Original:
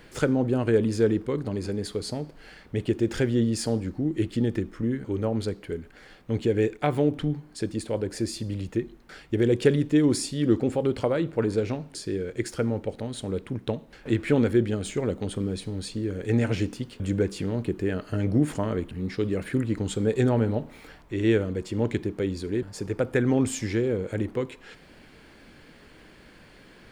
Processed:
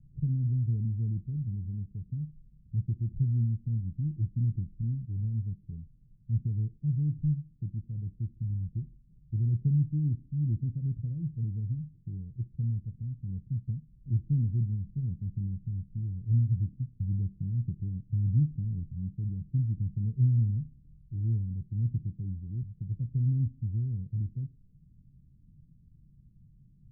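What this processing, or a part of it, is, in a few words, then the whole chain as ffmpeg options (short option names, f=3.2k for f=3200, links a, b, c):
the neighbour's flat through the wall: -af "lowpass=f=150:w=0.5412,lowpass=f=150:w=1.3066,equalizer=f=140:t=o:w=0.84:g=6.5,volume=-1.5dB"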